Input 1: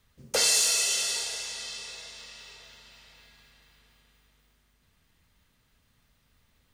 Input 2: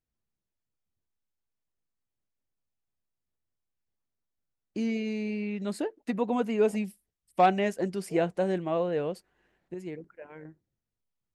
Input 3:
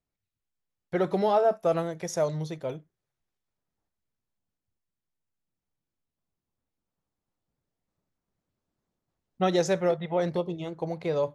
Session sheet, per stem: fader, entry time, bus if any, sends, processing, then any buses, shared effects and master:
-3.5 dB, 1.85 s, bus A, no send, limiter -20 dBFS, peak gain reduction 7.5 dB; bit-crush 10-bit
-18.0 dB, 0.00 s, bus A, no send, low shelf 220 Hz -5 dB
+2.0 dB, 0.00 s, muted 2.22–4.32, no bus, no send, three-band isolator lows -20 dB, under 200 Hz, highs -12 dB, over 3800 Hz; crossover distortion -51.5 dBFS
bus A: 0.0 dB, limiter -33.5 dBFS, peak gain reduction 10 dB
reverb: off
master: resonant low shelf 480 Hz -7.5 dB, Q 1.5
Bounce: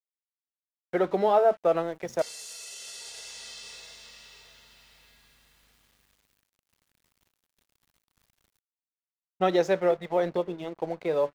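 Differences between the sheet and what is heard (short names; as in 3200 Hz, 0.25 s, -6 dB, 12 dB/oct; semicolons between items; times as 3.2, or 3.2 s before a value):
stem 2: muted; master: missing resonant low shelf 480 Hz -7.5 dB, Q 1.5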